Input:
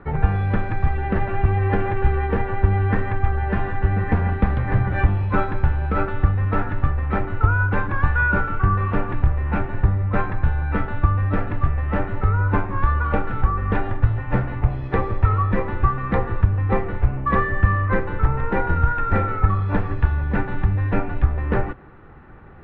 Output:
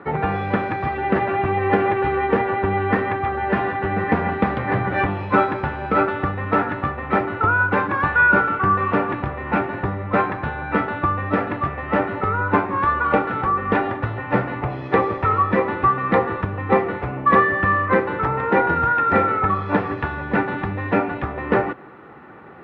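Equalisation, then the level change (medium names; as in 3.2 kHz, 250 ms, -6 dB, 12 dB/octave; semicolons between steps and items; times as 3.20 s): high-pass 230 Hz 12 dB/octave; band-stop 1.6 kHz, Q 17; +6.5 dB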